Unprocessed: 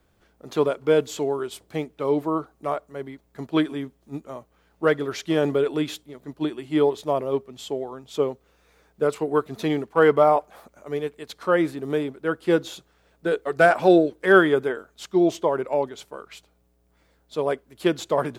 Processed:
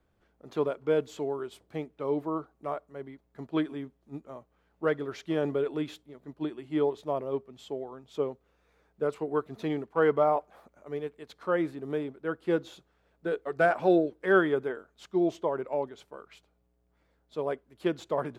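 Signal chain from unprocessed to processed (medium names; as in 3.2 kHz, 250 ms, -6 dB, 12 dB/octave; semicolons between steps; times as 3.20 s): treble shelf 3.8 kHz -10 dB; trim -7 dB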